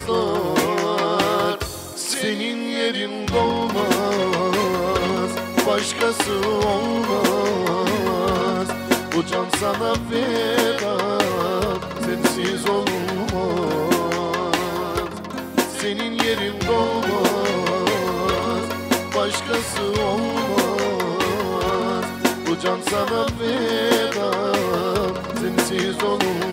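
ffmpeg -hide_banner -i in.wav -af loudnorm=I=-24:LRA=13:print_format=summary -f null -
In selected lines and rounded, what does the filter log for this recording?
Input Integrated:    -21.1 LUFS
Input True Peak:      -1.7 dBTP
Input LRA:             1.2 LU
Input Threshold:     -31.1 LUFS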